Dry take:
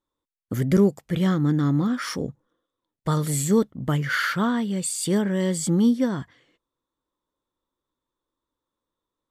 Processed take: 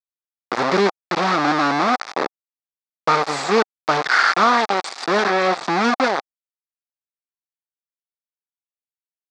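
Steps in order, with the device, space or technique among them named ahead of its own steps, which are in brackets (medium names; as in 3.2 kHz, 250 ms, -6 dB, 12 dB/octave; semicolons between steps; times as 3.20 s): hand-held game console (bit crusher 4-bit; cabinet simulation 440–4900 Hz, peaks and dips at 780 Hz +7 dB, 1.2 kHz +6 dB, 3 kHz -9 dB); 5.29–5.70 s: treble shelf 7.7 kHz -8.5 dB; trim +7 dB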